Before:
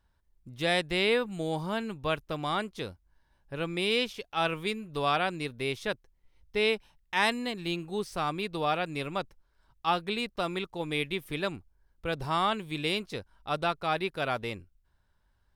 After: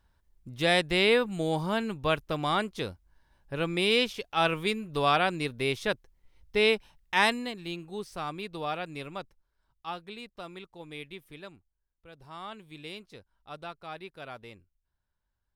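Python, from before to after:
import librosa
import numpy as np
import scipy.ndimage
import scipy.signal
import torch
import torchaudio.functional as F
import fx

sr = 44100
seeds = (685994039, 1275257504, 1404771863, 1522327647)

y = fx.gain(x, sr, db=fx.line((7.2, 3.0), (7.61, -4.5), (8.92, -4.5), (10.11, -11.0), (11.15, -11.0), (12.09, -19.5), (12.59, -12.0)))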